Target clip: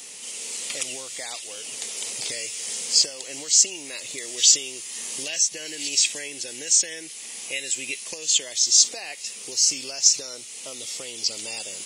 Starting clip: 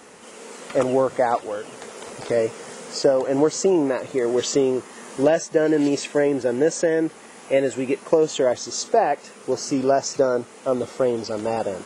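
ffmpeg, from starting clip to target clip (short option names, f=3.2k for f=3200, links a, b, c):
-filter_complex "[0:a]acrossover=split=1700[a][b];[a]acompressor=threshold=-32dB:ratio=6[c];[c][b]amix=inputs=2:normalize=0,aexciter=amount=10.2:drive=3.7:freq=2.2k,volume=-9dB"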